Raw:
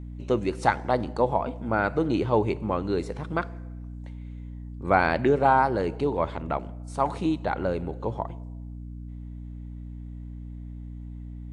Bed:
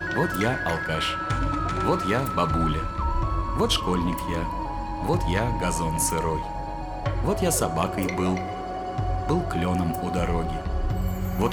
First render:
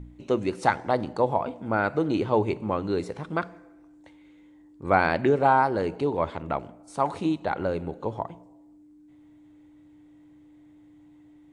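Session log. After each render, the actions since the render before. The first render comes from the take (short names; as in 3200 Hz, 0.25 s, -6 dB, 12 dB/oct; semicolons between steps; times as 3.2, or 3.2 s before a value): de-hum 60 Hz, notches 4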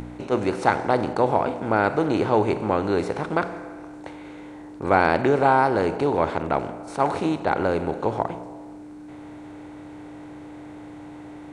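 per-bin compression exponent 0.6; attack slew limiter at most 380 dB/s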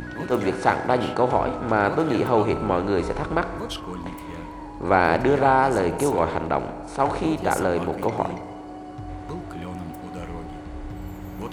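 add bed -10 dB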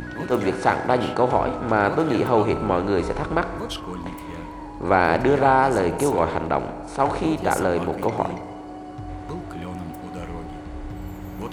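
gain +1 dB; limiter -3 dBFS, peak gain reduction 1.5 dB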